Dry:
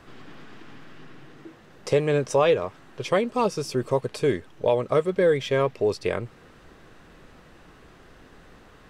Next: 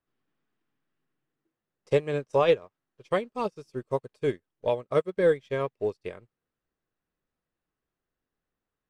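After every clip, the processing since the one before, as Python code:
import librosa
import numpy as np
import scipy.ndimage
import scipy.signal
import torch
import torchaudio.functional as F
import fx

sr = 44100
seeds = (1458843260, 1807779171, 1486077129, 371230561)

y = fx.upward_expand(x, sr, threshold_db=-41.0, expansion=2.5)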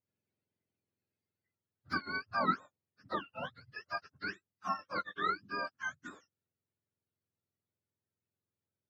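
y = fx.octave_mirror(x, sr, pivot_hz=810.0)
y = y * 10.0 ** (-7.0 / 20.0)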